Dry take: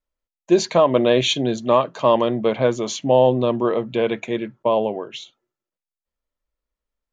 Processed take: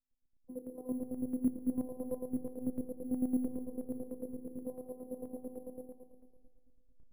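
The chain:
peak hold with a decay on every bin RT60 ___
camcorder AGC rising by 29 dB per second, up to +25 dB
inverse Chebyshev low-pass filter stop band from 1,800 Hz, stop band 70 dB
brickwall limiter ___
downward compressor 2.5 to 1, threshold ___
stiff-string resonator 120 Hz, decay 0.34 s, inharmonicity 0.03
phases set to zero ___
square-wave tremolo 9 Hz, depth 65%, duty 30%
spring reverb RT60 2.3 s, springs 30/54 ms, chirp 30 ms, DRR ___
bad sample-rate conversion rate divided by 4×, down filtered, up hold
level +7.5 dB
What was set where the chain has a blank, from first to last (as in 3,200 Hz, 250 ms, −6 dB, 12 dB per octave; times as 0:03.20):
1.49 s, −12 dBFS, −30 dBFS, 254 Hz, 16.5 dB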